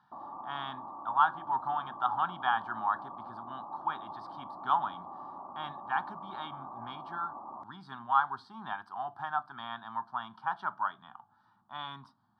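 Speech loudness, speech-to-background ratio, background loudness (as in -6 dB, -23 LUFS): -34.5 LUFS, 10.0 dB, -44.5 LUFS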